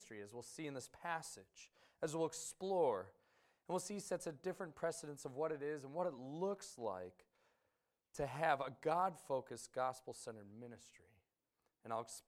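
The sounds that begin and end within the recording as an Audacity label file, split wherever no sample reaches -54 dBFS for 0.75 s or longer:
8.150000	10.960000	sound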